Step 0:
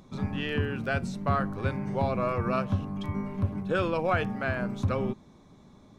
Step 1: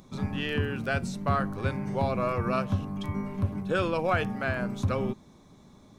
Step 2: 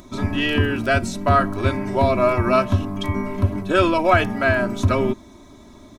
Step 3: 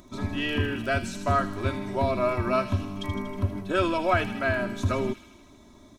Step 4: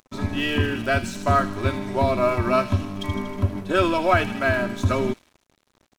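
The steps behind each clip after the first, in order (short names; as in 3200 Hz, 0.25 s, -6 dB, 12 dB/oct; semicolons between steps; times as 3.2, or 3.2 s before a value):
high shelf 5400 Hz +7.5 dB
comb 3.1 ms, depth 82%; gain +8.5 dB
thin delay 79 ms, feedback 68%, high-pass 2800 Hz, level -6.5 dB; gain -7.5 dB
crossover distortion -46.5 dBFS; gain +5 dB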